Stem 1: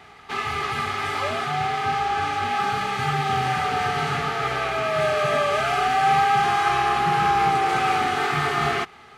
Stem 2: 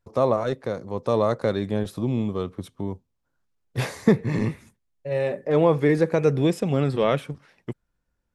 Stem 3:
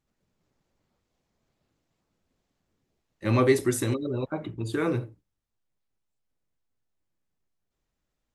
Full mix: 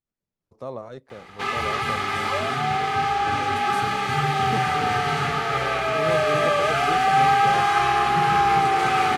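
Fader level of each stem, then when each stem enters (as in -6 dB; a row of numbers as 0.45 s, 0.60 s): +1.0 dB, -13.0 dB, -13.5 dB; 1.10 s, 0.45 s, 0.00 s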